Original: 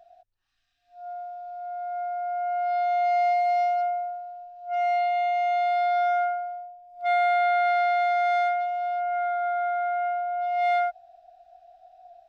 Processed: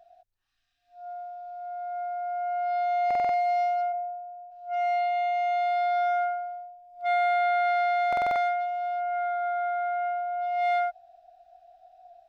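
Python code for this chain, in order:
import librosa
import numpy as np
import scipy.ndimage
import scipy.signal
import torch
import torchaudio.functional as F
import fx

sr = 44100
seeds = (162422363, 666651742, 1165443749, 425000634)

y = fx.cheby_ripple(x, sr, hz=2600.0, ripple_db=9, at=(3.92, 4.5), fade=0.02)
y = fx.buffer_glitch(y, sr, at_s=(3.06, 8.08), block=2048, repeats=5)
y = y * librosa.db_to_amplitude(-2.0)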